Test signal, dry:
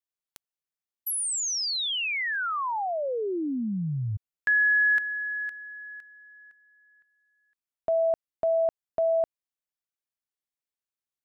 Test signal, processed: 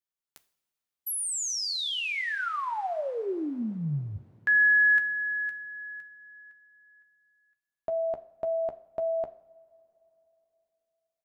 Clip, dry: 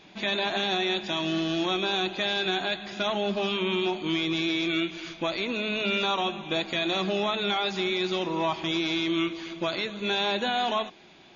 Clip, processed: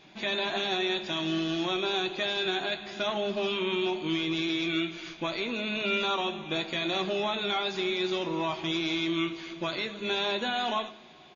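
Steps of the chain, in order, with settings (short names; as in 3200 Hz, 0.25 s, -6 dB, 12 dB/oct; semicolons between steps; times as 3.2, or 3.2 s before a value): doubler 13 ms -10.5 dB; two-slope reverb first 0.56 s, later 3.6 s, from -18 dB, DRR 10.5 dB; gain -3 dB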